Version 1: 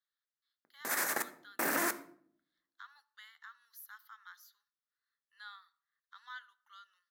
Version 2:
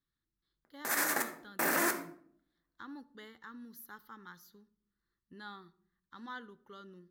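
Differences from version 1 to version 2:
speech: remove inverse Chebyshev high-pass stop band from 350 Hz, stop band 60 dB; background: send +7.5 dB

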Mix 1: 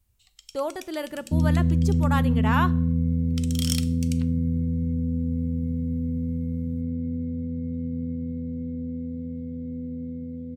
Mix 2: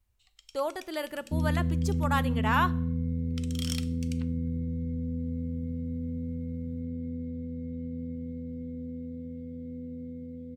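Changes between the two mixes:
first sound: add high shelf 3800 Hz -11 dB; master: add bell 140 Hz -8 dB 3 oct

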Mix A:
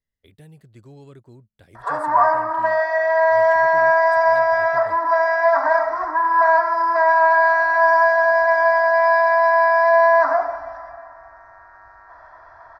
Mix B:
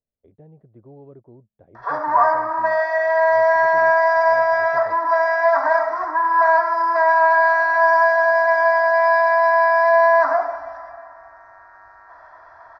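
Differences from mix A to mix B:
speech: add synth low-pass 670 Hz, resonance Q 1.6; master: add low shelf 100 Hz -9 dB

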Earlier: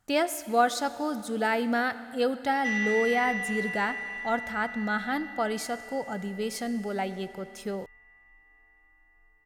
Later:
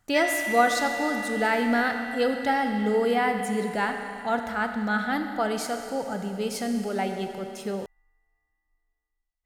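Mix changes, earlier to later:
speech: send +10.0 dB; background: entry -2.50 s

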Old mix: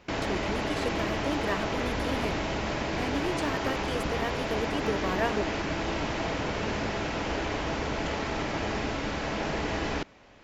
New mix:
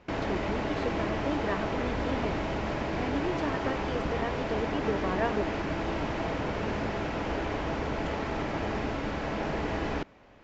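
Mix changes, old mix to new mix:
speech: add inverse Chebyshev low-pass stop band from 11000 Hz, stop band 40 dB; master: add high shelf 3100 Hz -11 dB

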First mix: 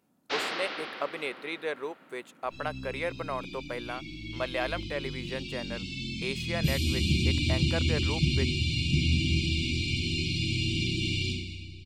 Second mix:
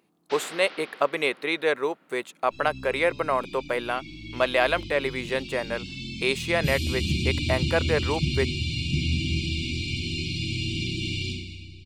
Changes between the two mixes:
speech +9.5 dB; first sound -6.0 dB

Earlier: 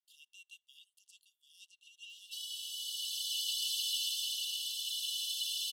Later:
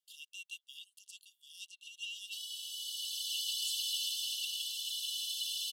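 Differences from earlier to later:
speech +9.5 dB; reverb: off

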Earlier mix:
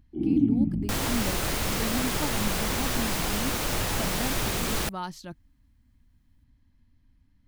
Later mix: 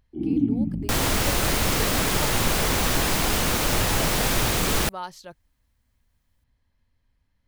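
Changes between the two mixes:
speech: add resonant low shelf 360 Hz -7 dB, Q 3; second sound +5.5 dB

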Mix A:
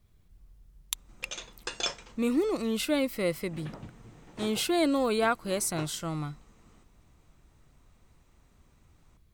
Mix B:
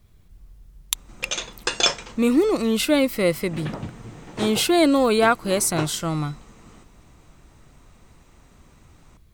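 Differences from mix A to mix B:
speech +8.5 dB; background +12.0 dB

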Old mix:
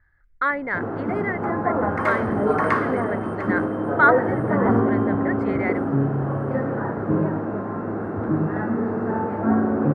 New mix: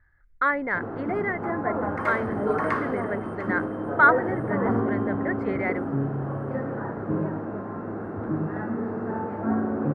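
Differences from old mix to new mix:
speech: add high shelf 4700 Hz -8.5 dB; background -5.5 dB

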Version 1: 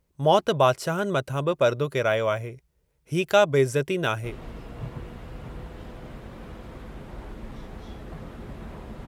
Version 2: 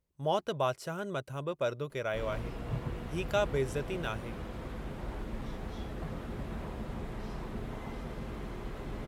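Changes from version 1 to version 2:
speech -11.0 dB; background: entry -2.10 s

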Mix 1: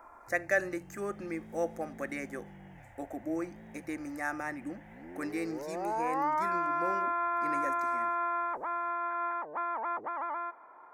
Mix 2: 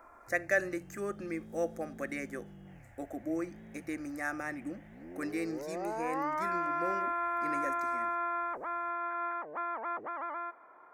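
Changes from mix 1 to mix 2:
second sound: entry +1.70 s; master: add bell 900 Hz -7.5 dB 0.39 oct

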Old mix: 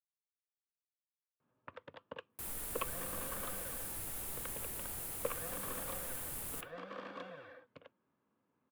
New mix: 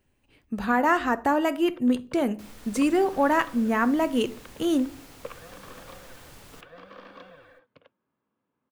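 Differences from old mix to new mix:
speech: unmuted; master: add resonant high shelf 7600 Hz -12 dB, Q 1.5

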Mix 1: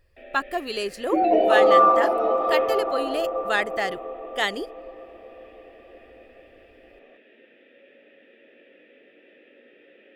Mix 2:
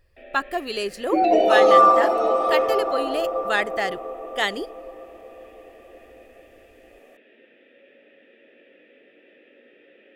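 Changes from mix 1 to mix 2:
second sound: remove air absorption 310 m; reverb: on

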